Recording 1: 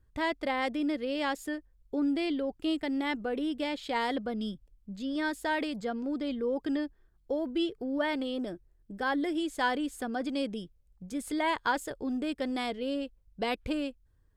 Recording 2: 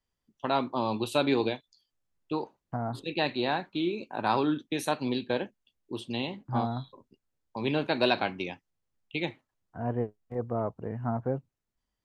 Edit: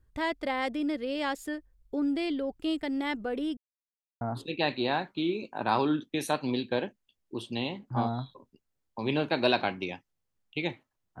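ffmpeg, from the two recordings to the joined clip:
ffmpeg -i cue0.wav -i cue1.wav -filter_complex "[0:a]apad=whole_dur=11.2,atrim=end=11.2,asplit=2[link_01][link_02];[link_01]atrim=end=3.57,asetpts=PTS-STARTPTS,afade=type=out:start_time=3.566:duration=0.004:curve=hsin[link_03];[link_02]atrim=start=3.57:end=4.21,asetpts=PTS-STARTPTS,volume=0[link_04];[1:a]atrim=start=2.79:end=9.78,asetpts=PTS-STARTPTS,afade=type=in:duration=0.004:curve=hsin[link_05];[link_03][link_04][link_05]concat=n=3:v=0:a=1" out.wav

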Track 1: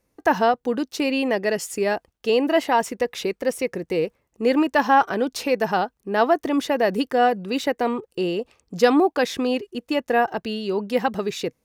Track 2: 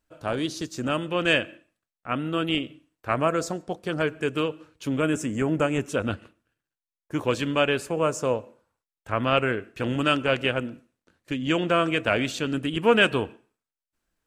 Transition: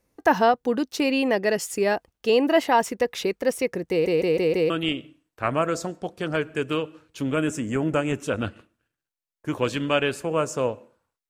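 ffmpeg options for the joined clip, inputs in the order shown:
ffmpeg -i cue0.wav -i cue1.wav -filter_complex "[0:a]apad=whole_dur=11.29,atrim=end=11.29,asplit=5[link_01][link_02][link_03][link_04][link_05];[link_01]atrim=end=4.062[link_06];[link_02]atrim=start=3.898:end=4.062[link_07];[link_03]atrim=start=3.898:end=4.062[link_08];[link_04]atrim=start=3.898:end=4.062[link_09];[link_05]atrim=start=3.898:end=4.062[link_10];[1:a]atrim=start=2.358:end=8.95[link_11];[link_06][link_07]acrossfade=duration=0.004:curve1=hsin:curve2=hsin[link_12];[link_12][link_08]acrossfade=duration=0.004:curve1=hsin:curve2=hsin[link_13];[link_13][link_09]acrossfade=duration=0.004:curve1=hsin:curve2=hsin[link_14];[link_14][link_10]acrossfade=duration=0.004:curve1=hsin:curve2=hsin[link_15];[link_15][link_11]acrossfade=duration=0.004:curve1=hsin:curve2=hsin" out.wav

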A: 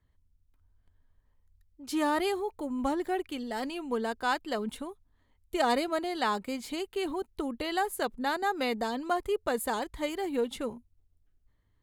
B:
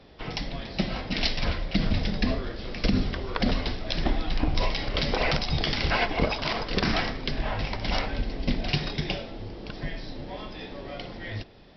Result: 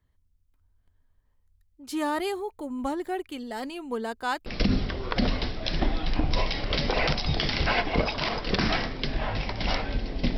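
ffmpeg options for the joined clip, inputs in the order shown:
ffmpeg -i cue0.wav -i cue1.wav -filter_complex "[0:a]apad=whole_dur=10.37,atrim=end=10.37,atrim=end=4.462[link_01];[1:a]atrim=start=2.698:end=8.61[link_02];[link_01][link_02]acrossfade=duration=0.004:curve1=hsin:curve2=hsin" out.wav

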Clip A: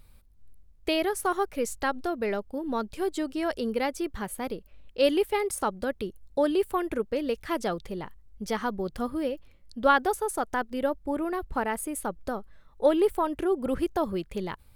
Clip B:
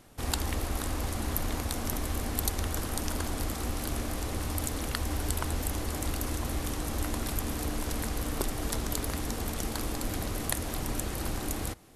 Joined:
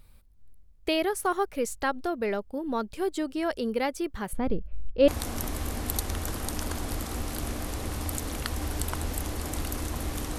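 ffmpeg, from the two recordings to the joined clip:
ffmpeg -i cue0.wav -i cue1.wav -filter_complex "[0:a]asettb=1/sr,asplit=3[link_01][link_02][link_03];[link_01]atrim=end=4.334[link_04];[link_02]atrim=start=4.33:end=5.08,asetpts=PTS-STARTPTS,afade=type=in:duration=0.004:curve=qsin,afade=type=out:start_time=0.746:duration=0.004:curve=qsin,aemphasis=mode=reproduction:type=riaa[link_05];[link_03]atrim=start=5.076[link_06];[link_04][link_05]acrossfade=duration=0.004:curve1=hsin:curve2=qsin[link_07];[link_07][link_06]acrossfade=duration=0.004:curve1=qsin:curve2=hsin,apad=whole_dur=10.38,atrim=end=10.38,atrim=end=5.082[link_08];[1:a]atrim=start=1.568:end=6.87[link_09];[link_08][link_09]acrossfade=duration=0.004:curve1=hsin:curve2=hsin" out.wav

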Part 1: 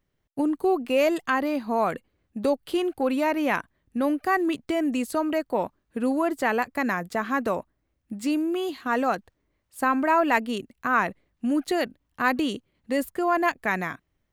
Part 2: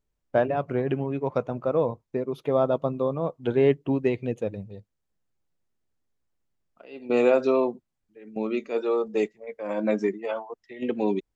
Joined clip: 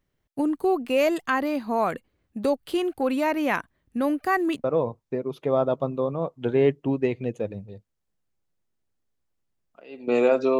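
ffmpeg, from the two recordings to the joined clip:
ffmpeg -i cue0.wav -i cue1.wav -filter_complex "[0:a]apad=whole_dur=10.59,atrim=end=10.59,atrim=end=4.642[link_01];[1:a]atrim=start=1.658:end=7.61[link_02];[link_01][link_02]acrossfade=duration=0.004:curve1=hsin:curve2=hsin" out.wav

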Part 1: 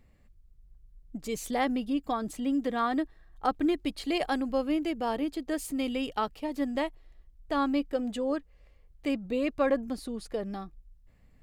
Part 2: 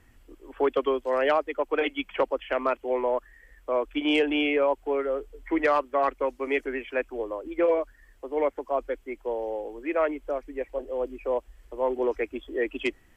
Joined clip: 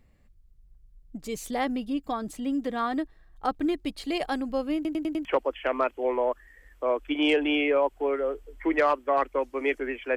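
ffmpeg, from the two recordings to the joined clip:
ffmpeg -i cue0.wav -i cue1.wav -filter_complex "[0:a]apad=whole_dur=10.16,atrim=end=10.16,asplit=5[link_01][link_02][link_03][link_04][link_05];[link_01]atrim=end=4.852[link_06];[link_02]atrim=start=4.748:end=4.852[link_07];[link_03]atrim=start=4.748:end=4.852[link_08];[link_04]atrim=start=4.748:end=4.852[link_09];[link_05]atrim=start=4.748:end=4.852[link_10];[1:a]atrim=start=2.108:end=7.02[link_11];[link_06][link_07]acrossfade=duration=0.004:curve1=hsin:curve2=hsin[link_12];[link_12][link_08]acrossfade=duration=0.004:curve1=hsin:curve2=hsin[link_13];[link_13][link_09]acrossfade=duration=0.004:curve1=hsin:curve2=hsin[link_14];[link_14][link_10]acrossfade=duration=0.004:curve1=hsin:curve2=hsin[link_15];[link_15][link_11]acrossfade=duration=0.004:curve1=hsin:curve2=hsin" out.wav

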